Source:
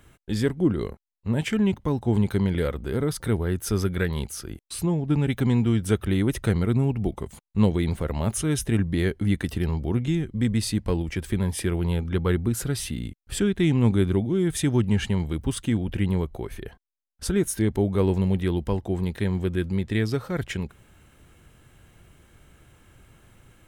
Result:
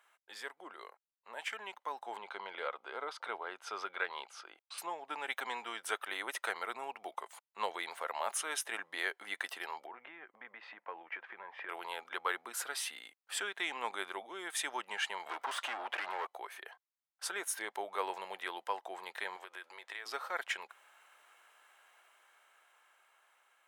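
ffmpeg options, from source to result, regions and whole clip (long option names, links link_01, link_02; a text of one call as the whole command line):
ffmpeg -i in.wav -filter_complex "[0:a]asettb=1/sr,asplit=3[link_01][link_02][link_03];[link_01]atrim=end=2.174[link_04];[link_02]atrim=start=2.17:end=4.78,asetpts=PTS-STARTPTS,afade=type=in:duration=0.004:curve=qsin,afade=type=out:start_time=2.606:duration=0.004:curve=qsin,lowpass=3700,equalizer=frequency=1800:width_type=o:width=0.25:gain=-9[link_05];[link_03]atrim=start=4.776[link_06];[link_04][link_05]acrossfade=duration=0.004:curve1=hsin:curve2=qsin[link_07];[link_07][link_06]acrossfade=duration=0.004:curve1=qsin:curve2=hsin,asettb=1/sr,asplit=3[link_08][link_09][link_10];[link_08]atrim=end=9.864[link_11];[link_09]atrim=start=9.86:end=11.69,asetpts=PTS-STARTPTS,afade=type=in:duration=0.004:curve=qsin,afade=type=out:start_time=1.826:duration=0.004:curve=qsin,lowpass=frequency=2300:width=0.5412,lowpass=frequency=2300:width=1.3066,acompressor=threshold=-25dB:ratio=6:attack=3.2:release=140:knee=1:detection=peak[link_12];[link_10]atrim=start=11.686[link_13];[link_11][link_12]acrossfade=duration=0.004:curve1=hsin:curve2=qsin[link_14];[link_14][link_13]acrossfade=duration=0.004:curve1=qsin:curve2=hsin,asettb=1/sr,asplit=3[link_15][link_16][link_17];[link_15]atrim=end=15.264[link_18];[link_16]atrim=start=15.26:end=16.27,asetpts=PTS-STARTPTS,afade=type=in:duration=0.004:curve=qsin,afade=type=out:start_time=1.006:duration=0.004:curve=qsin,acompressor=threshold=-29dB:ratio=2:attack=3.2:release=140:knee=1:detection=peak,asplit=2[link_19][link_20];[link_20]highpass=frequency=720:poles=1,volume=27dB,asoftclip=type=tanh:threshold=-19.5dB[link_21];[link_19][link_21]amix=inputs=2:normalize=0,lowpass=frequency=1700:poles=1,volume=-6dB[link_22];[link_17]atrim=start=16.266[link_23];[link_18][link_22]acrossfade=duration=0.004:curve1=hsin:curve2=qsin[link_24];[link_24][link_23]acrossfade=duration=0.004:curve1=qsin:curve2=hsin,asettb=1/sr,asplit=3[link_25][link_26][link_27];[link_25]atrim=end=19.364[link_28];[link_26]atrim=start=19.36:end=20.06,asetpts=PTS-STARTPTS,afade=type=in:duration=0.004:curve=qsin,afade=type=out:start_time=0.696:duration=0.004:curve=qsin,highpass=370,acompressor=threshold=-33dB:ratio=10:attack=3.2:release=140:knee=1:detection=peak[link_29];[link_27]atrim=start=20.056[link_30];[link_28][link_29]acrossfade=duration=0.004:curve1=hsin:curve2=qsin[link_31];[link_31][link_30]acrossfade=duration=0.004:curve1=qsin:curve2=hsin,highpass=frequency=780:width=0.5412,highpass=frequency=780:width=1.3066,highshelf=frequency=2400:gain=-10.5,dynaudnorm=framelen=470:gausssize=9:maxgain=7dB,volume=-4dB" out.wav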